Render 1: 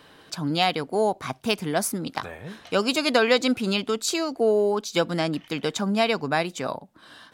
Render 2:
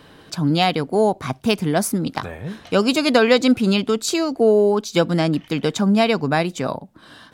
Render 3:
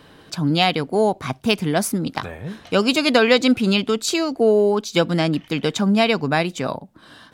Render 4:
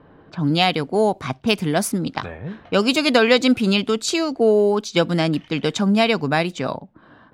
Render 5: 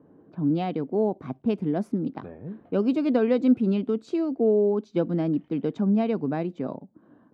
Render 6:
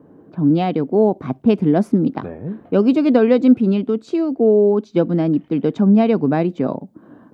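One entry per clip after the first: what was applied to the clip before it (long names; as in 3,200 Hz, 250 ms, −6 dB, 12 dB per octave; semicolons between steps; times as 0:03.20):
low-shelf EQ 340 Hz +8.5 dB; level +2.5 dB
dynamic equaliser 2,800 Hz, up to +4 dB, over −35 dBFS, Q 0.96; level −1 dB
low-pass that shuts in the quiet parts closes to 1,100 Hz, open at −17 dBFS
resonant band-pass 280 Hz, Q 1.2; level −2 dB
speech leveller 2 s; level +8 dB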